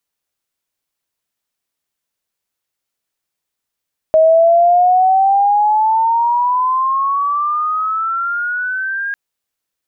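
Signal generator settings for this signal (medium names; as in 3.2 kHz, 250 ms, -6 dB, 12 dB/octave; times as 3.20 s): gliding synth tone sine, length 5.00 s, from 630 Hz, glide +16.5 st, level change -12 dB, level -6 dB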